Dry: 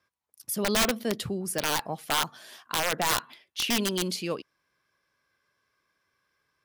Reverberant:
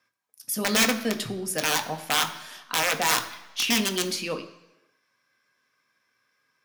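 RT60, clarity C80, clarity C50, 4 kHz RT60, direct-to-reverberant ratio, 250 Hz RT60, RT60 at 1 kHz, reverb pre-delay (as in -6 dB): 1.0 s, 14.5 dB, 12.5 dB, 1.0 s, 5.0 dB, 0.95 s, 0.95 s, 3 ms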